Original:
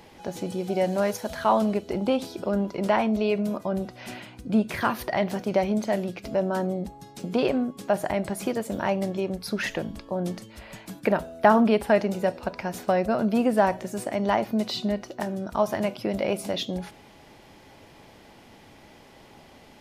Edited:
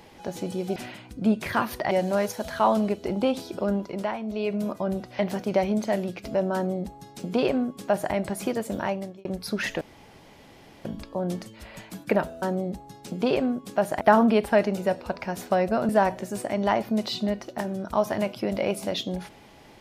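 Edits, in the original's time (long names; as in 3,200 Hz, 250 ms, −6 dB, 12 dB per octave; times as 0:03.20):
0:02.55–0:03.53: duck −10 dB, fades 0.48 s
0:04.04–0:05.19: move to 0:00.76
0:06.54–0:08.13: duplicate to 0:11.38
0:08.77–0:09.25: fade out
0:09.81: splice in room tone 1.04 s
0:13.26–0:13.51: remove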